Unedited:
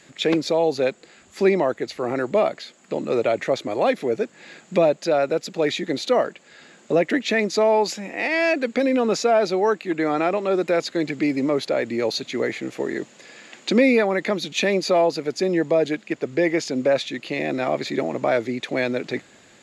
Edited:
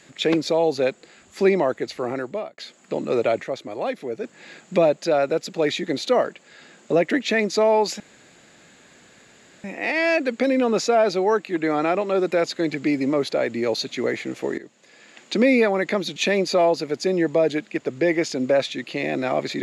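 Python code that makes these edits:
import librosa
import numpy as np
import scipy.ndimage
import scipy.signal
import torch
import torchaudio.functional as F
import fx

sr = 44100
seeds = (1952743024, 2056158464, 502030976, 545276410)

y = fx.edit(x, sr, fx.fade_out_span(start_s=1.98, length_s=0.6),
    fx.clip_gain(start_s=3.42, length_s=0.82, db=-6.5),
    fx.insert_room_tone(at_s=8.0, length_s=1.64),
    fx.fade_in_from(start_s=12.94, length_s=1.0, floor_db=-15.5), tone=tone)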